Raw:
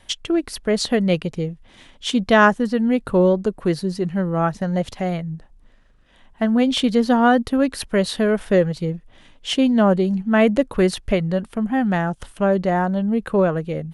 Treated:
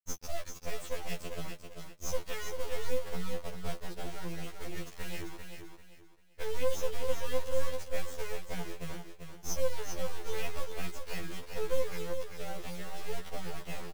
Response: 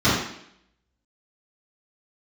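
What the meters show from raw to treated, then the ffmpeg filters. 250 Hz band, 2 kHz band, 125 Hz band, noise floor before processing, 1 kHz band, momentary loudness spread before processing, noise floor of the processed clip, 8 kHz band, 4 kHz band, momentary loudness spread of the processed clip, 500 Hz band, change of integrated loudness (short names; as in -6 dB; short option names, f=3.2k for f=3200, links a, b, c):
-29.0 dB, -18.5 dB, -19.5 dB, -52 dBFS, -21.0 dB, 10 LU, -53 dBFS, -7.0 dB, -16.5 dB, 9 LU, -17.0 dB, -20.0 dB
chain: -filter_complex "[0:a]acrossover=split=89|3700[a][b][c];[a]acompressor=threshold=-54dB:ratio=4[d];[b]acompressor=threshold=-26dB:ratio=4[e];[c]acompressor=threshold=-42dB:ratio=4[f];[d][e][f]amix=inputs=3:normalize=0,asplit=3[g][h][i];[g]bandpass=f=270:t=q:w=8,volume=0dB[j];[h]bandpass=f=2.29k:t=q:w=8,volume=-6dB[k];[i]bandpass=f=3.01k:t=q:w=8,volume=-9dB[l];[j][k][l]amix=inputs=3:normalize=0,alimiter=level_in=2.5dB:limit=-24dB:level=0:latency=1:release=284,volume=-2.5dB,highpass=f=58:p=1,equalizer=f=1.2k:t=o:w=2.2:g=4.5,aeval=exprs='abs(val(0))':c=same,acrusher=bits=7:mix=0:aa=0.000001,aecho=1:1:392|784|1176|1568:0.473|0.137|0.0398|0.0115,afftfilt=real='re*2*eq(mod(b,4),0)':imag='im*2*eq(mod(b,4),0)':win_size=2048:overlap=0.75,volume=6dB"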